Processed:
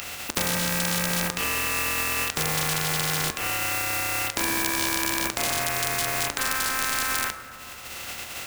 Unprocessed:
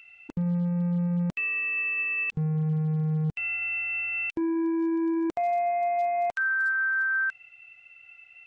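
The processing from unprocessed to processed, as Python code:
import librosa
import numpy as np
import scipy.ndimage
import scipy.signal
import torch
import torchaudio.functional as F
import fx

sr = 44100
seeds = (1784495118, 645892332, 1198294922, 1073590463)

y = fx.spec_flatten(x, sr, power=0.22)
y = fx.rev_fdn(y, sr, rt60_s=1.4, lf_ratio=1.0, hf_ratio=0.45, size_ms=79.0, drr_db=7.5)
y = fx.band_squash(y, sr, depth_pct=70)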